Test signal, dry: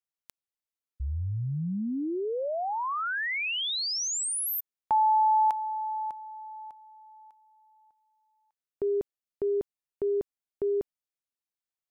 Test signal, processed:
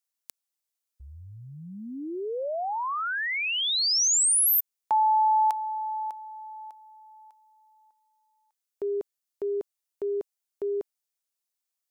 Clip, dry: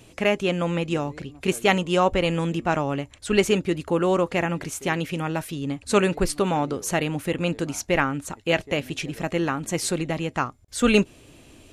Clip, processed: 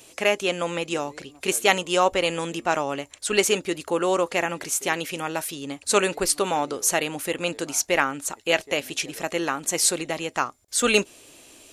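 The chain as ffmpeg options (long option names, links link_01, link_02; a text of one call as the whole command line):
ffmpeg -i in.wav -af "bass=frequency=250:gain=-15,treble=frequency=4000:gain=8,volume=1dB" out.wav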